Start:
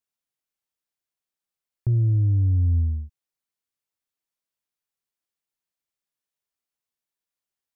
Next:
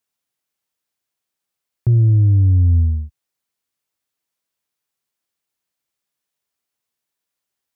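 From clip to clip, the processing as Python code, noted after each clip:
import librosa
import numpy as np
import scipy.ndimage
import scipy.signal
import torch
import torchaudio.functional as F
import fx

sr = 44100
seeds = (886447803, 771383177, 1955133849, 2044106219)

y = scipy.signal.sosfilt(scipy.signal.butter(2, 53.0, 'highpass', fs=sr, output='sos'), x)
y = F.gain(torch.from_numpy(y), 7.5).numpy()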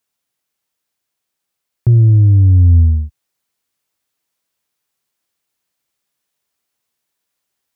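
y = fx.rider(x, sr, range_db=10, speed_s=0.5)
y = F.gain(torch.from_numpy(y), 5.5).numpy()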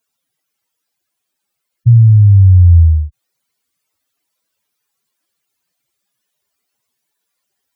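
y = fx.spec_expand(x, sr, power=2.7)
y = F.gain(torch.from_numpy(y), 3.0).numpy()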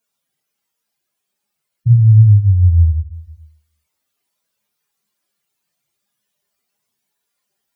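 y = fx.room_shoebox(x, sr, seeds[0], volume_m3=310.0, walls='furnished', distance_m=1.3)
y = F.gain(torch.from_numpy(y), -3.0).numpy()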